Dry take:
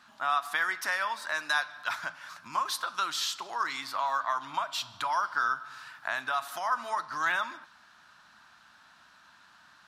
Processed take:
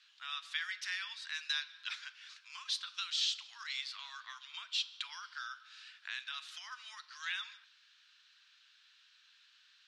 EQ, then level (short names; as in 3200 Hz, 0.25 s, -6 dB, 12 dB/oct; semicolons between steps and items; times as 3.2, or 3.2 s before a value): ladder high-pass 2300 Hz, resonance 30%; LPF 11000 Hz; air absorption 99 m; +6.5 dB